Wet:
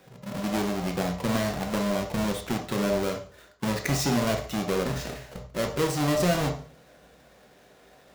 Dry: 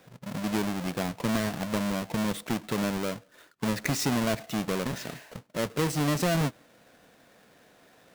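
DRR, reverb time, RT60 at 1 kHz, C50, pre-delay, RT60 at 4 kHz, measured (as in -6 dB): 2.0 dB, 0.45 s, 0.45 s, 7.0 dB, 3 ms, 0.40 s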